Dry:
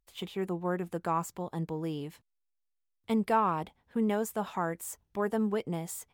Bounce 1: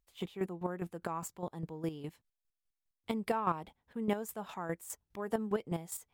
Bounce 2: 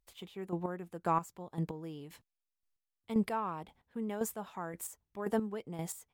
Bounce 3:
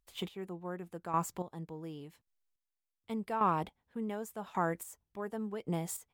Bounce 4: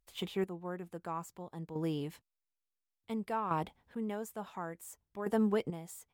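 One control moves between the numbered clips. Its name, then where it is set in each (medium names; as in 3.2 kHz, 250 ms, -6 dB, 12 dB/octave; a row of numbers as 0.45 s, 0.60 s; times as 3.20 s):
square tremolo, rate: 4.9 Hz, 1.9 Hz, 0.88 Hz, 0.57 Hz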